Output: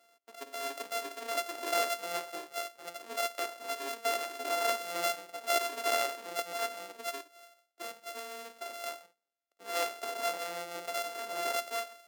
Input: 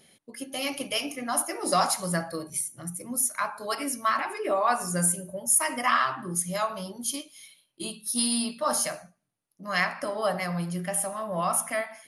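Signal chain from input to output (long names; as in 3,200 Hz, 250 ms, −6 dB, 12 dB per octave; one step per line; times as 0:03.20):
samples sorted by size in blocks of 64 samples
high-pass filter 330 Hz 24 dB per octave
0:07.96–0:08.84: downward compressor 6 to 1, threshold −32 dBFS, peak gain reduction 11.5 dB
level −6.5 dB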